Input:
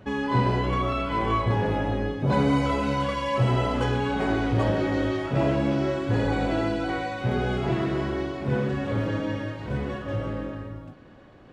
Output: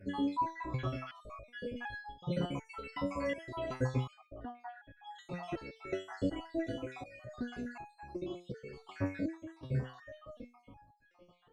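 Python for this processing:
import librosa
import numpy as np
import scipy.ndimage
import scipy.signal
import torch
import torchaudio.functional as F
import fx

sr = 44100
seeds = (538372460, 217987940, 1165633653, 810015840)

y = fx.spec_dropout(x, sr, seeds[0], share_pct=69)
y = fx.lowpass(y, sr, hz=1300.0, slope=12, at=(4.13, 5.04))
y = fx.resonator_held(y, sr, hz=2.7, low_hz=95.0, high_hz=830.0)
y = y * librosa.db_to_amplitude(5.0)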